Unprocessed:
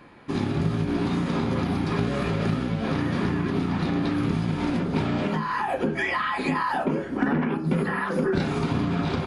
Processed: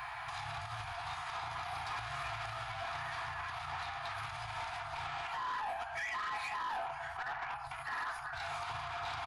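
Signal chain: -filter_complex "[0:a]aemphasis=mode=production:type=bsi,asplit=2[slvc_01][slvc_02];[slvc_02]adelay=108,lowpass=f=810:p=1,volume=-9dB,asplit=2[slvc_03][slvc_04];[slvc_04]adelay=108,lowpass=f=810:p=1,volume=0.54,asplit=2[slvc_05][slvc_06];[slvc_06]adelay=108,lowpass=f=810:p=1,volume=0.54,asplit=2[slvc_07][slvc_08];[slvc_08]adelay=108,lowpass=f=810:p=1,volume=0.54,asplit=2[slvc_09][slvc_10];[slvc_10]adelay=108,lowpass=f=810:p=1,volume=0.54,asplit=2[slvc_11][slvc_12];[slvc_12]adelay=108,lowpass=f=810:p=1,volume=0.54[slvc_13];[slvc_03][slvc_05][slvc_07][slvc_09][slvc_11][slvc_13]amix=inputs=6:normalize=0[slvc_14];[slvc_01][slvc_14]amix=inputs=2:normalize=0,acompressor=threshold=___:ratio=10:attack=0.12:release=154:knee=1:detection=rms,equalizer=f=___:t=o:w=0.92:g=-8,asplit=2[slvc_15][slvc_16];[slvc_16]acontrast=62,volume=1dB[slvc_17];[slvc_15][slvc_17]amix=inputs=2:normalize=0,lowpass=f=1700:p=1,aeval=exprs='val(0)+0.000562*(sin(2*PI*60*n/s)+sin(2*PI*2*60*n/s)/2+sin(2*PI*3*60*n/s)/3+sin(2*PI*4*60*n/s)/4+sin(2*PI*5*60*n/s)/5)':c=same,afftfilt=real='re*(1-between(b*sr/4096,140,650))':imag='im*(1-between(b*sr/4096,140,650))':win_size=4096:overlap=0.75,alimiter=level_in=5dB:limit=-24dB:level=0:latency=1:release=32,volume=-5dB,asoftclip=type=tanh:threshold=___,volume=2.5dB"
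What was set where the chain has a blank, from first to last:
-37dB, 120, -36dB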